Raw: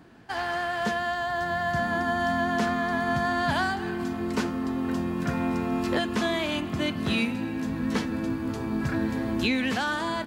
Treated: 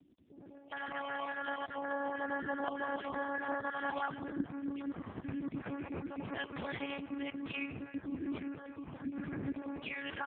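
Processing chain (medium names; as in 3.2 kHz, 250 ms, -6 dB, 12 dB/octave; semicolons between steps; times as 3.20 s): random holes in the spectrogram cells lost 21%; 5.72–7.18 s: high-pass 74 Hz 6 dB/octave; 8.57–9.06 s: bass shelf 290 Hz -9.5 dB; bands offset in time lows, highs 400 ms, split 430 Hz; monotone LPC vocoder at 8 kHz 280 Hz; trim -6.5 dB; AMR-NB 4.75 kbps 8 kHz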